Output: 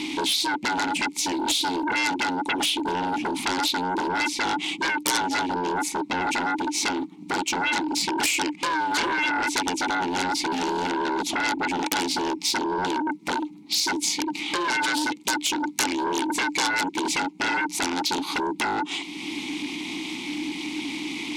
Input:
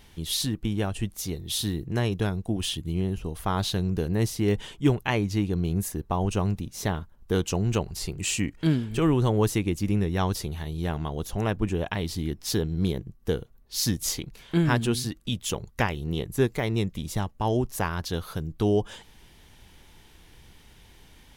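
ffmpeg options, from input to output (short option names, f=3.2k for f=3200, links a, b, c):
-filter_complex "[0:a]acompressor=mode=upward:threshold=-39dB:ratio=2.5,equalizer=f=125:t=o:w=1:g=9,equalizer=f=2k:t=o:w=1:g=6,equalizer=f=4k:t=o:w=1:g=10,equalizer=f=8k:t=o:w=1:g=10,aeval=exprs='val(0)*sin(2*PI*180*n/s)':c=same,acompressor=threshold=-29dB:ratio=6,asplit=3[a][b][c];[a]bandpass=f=300:t=q:w=8,volume=0dB[d];[b]bandpass=f=870:t=q:w=8,volume=-6dB[e];[c]bandpass=f=2.24k:t=q:w=8,volume=-9dB[f];[d][e][f]amix=inputs=3:normalize=0,aeval=exprs='0.0316*sin(PI/2*6.31*val(0)/0.0316)':c=same,bass=f=250:g=-10,treble=f=4k:g=10,volume=9dB"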